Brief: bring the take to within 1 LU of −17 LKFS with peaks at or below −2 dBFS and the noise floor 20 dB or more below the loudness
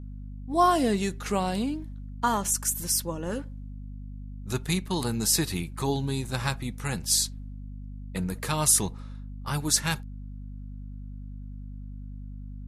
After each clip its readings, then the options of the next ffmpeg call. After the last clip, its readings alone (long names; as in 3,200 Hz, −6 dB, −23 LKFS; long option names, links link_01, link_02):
mains hum 50 Hz; hum harmonics up to 250 Hz; level of the hum −36 dBFS; integrated loudness −27.0 LKFS; sample peak −8.0 dBFS; target loudness −17.0 LKFS
→ -af "bandreject=frequency=50:width_type=h:width=4,bandreject=frequency=100:width_type=h:width=4,bandreject=frequency=150:width_type=h:width=4,bandreject=frequency=200:width_type=h:width=4,bandreject=frequency=250:width_type=h:width=4"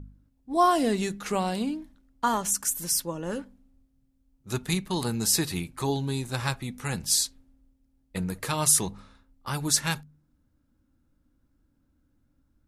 mains hum none found; integrated loudness −27.0 LKFS; sample peak −7.5 dBFS; target loudness −17.0 LKFS
→ -af "volume=10dB,alimiter=limit=-2dB:level=0:latency=1"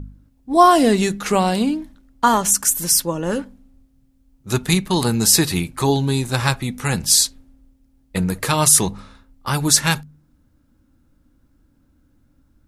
integrated loudness −17.5 LKFS; sample peak −2.0 dBFS; background noise floor −60 dBFS